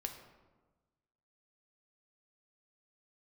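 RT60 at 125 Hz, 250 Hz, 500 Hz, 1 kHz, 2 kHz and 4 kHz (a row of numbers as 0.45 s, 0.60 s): 1.6 s, 1.4 s, 1.3 s, 1.2 s, 0.90 s, 0.70 s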